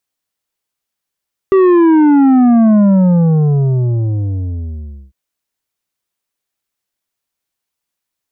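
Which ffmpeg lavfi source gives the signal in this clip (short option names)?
-f lavfi -i "aevalsrc='0.473*clip((3.6-t)/2.36,0,1)*tanh(2.51*sin(2*PI*390*3.6/log(65/390)*(exp(log(65/390)*t/3.6)-1)))/tanh(2.51)':d=3.6:s=44100"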